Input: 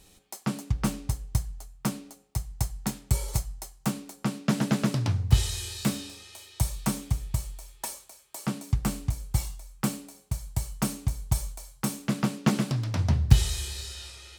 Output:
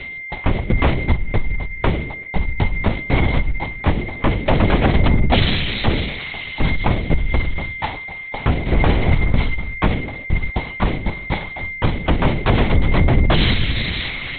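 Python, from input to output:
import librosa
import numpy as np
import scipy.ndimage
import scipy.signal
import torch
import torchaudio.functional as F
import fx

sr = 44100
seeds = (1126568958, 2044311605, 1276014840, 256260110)

y = fx.zero_step(x, sr, step_db=-33.0, at=(8.66, 9.32))
y = fx.highpass(y, sr, hz=170.0, slope=12, at=(10.49, 11.61))
y = fx.fold_sine(y, sr, drive_db=19, ceiling_db=-3.5)
y = fx.leveller(y, sr, passes=1)
y = y + 10.0 ** (-21.0 / 20.0) * np.sin(2.0 * np.pi * 2100.0 * np.arange(len(y)) / sr)
y = fx.dynamic_eq(y, sr, hz=710.0, q=4.7, threshold_db=-31.0, ratio=4.0, max_db=5)
y = fx.lpc_vocoder(y, sr, seeds[0], excitation='whisper', order=8)
y = y * librosa.db_to_amplitude(-7.5)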